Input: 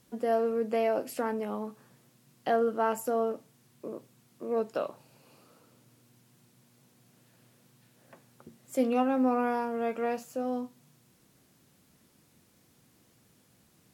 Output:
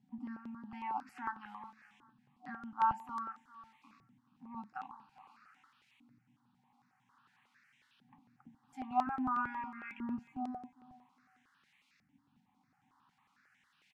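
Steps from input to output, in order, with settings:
0:09.07–0:10.19: RIAA equalisation playback
brick-wall band-stop 300–740 Hz
high-shelf EQ 8,600 Hz −11 dB
in parallel at −2 dB: downward compressor, threshold −45 dBFS, peak gain reduction 24.5 dB
on the sum: auto-filter band-pass saw up 0.5 Hz 340–2,700 Hz
repeating echo 403 ms, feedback 18%, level −18.5 dB
step-sequenced phaser 11 Hz 310–4,500 Hz
level +5 dB

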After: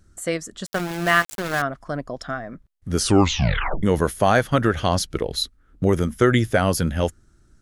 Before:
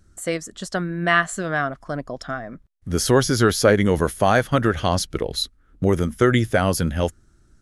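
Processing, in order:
0:00.66–0:01.62: centre clipping without the shift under −24.5 dBFS
0:02.98: tape stop 0.85 s

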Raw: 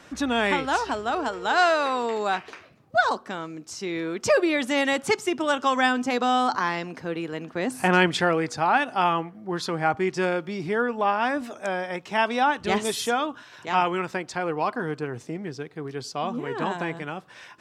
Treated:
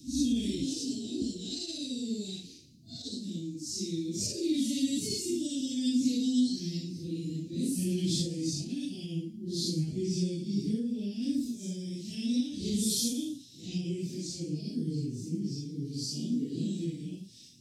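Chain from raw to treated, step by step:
random phases in long frames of 200 ms
0:00.64–0:01.22: high-pass filter 120 Hz 24 dB per octave
delay with a high-pass on its return 113 ms, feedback 35%, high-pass 5,200 Hz, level −11 dB
brickwall limiter −15.5 dBFS, peak gain reduction 10 dB
Chebyshev band-stop filter 270–4,400 Hz, order 3
level +3 dB

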